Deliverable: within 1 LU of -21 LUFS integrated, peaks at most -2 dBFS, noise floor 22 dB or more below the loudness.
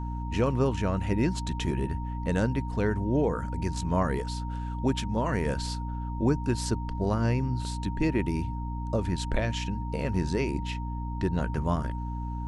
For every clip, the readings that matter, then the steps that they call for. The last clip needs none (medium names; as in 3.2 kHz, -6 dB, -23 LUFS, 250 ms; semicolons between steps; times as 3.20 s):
hum 60 Hz; highest harmonic 300 Hz; hum level -31 dBFS; steady tone 930 Hz; tone level -40 dBFS; loudness -29.5 LUFS; peak level -11.5 dBFS; loudness target -21.0 LUFS
-> hum notches 60/120/180/240/300 Hz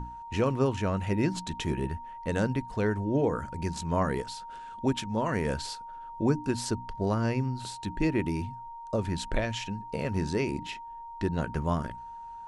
hum not found; steady tone 930 Hz; tone level -40 dBFS
-> band-stop 930 Hz, Q 30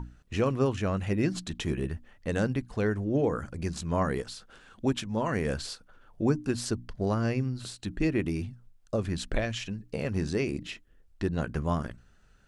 steady tone not found; loudness -31.0 LUFS; peak level -12.5 dBFS; loudness target -21.0 LUFS
-> trim +10 dB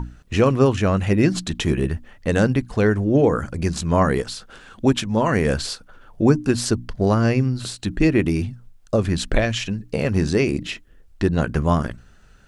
loudness -21.0 LUFS; peak level -2.5 dBFS; noise floor -50 dBFS